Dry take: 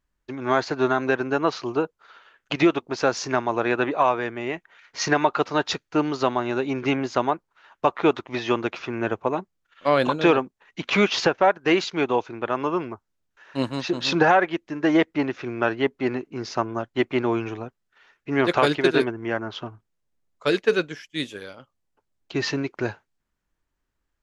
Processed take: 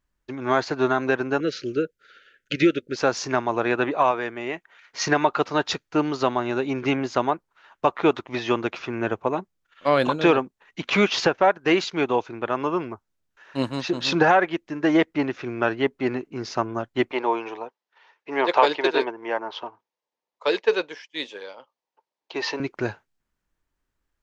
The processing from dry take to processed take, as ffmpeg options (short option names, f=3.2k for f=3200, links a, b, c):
-filter_complex "[0:a]asettb=1/sr,asplit=3[a][b][c];[a]atrim=end=1.404[d];[b]atrim=start=1.4:end=2.96,asetpts=PTS-STARTPTS,afade=t=in:d=0.004:c=qsin,afade=t=out:st=1.556:d=0.004:c=qsin,asuperstop=centerf=890:order=12:qfactor=1.1[e];[c]atrim=start=2.956[f];[d][e]acrossfade=d=0.004:c1=hsin:c2=qsin[g];[g][f]acrossfade=d=0.004:c1=qsin:c2=hsin,asettb=1/sr,asplit=3[h][i][j];[h]atrim=end=4.114[k];[i]atrim=start=4.11:end=5.06,asetpts=PTS-STARTPTS,afade=t=in:d=0.004:c=qsin,afade=t=out:st=0.946:d=0.004:c=qsin,lowshelf=f=160:g=-9[l];[j]atrim=start=5.056[m];[k][l]acrossfade=d=0.004:c1=hsin:c2=qsin[n];[n][m]acrossfade=d=0.004:c1=qsin:c2=hsin,asettb=1/sr,asplit=3[o][p][q];[o]atrim=end=17.114[r];[p]atrim=start=17.11:end=22.6,asetpts=PTS-STARTPTS,afade=t=in:d=0.004:c=qsin,afade=t=out:st=5.486:d=0.004:c=qsin,highpass=440,equalizer=f=490:t=q:w=4:g=5,equalizer=f=920:t=q:w=4:g=10,equalizer=f=1.4k:t=q:w=4:g=-5,lowpass=f=5.9k:w=0.5412,lowpass=f=5.9k:w=1.3066[s];[q]atrim=start=22.596[t];[r][s]acrossfade=d=0.004:c1=hsin:c2=qsin[u];[u][t]acrossfade=d=0.004:c1=qsin:c2=hsin"